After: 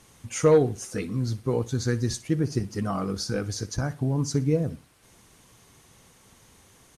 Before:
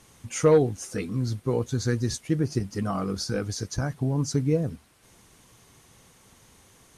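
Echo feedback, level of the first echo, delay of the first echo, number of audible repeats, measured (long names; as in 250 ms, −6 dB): 34%, −18.0 dB, 60 ms, 2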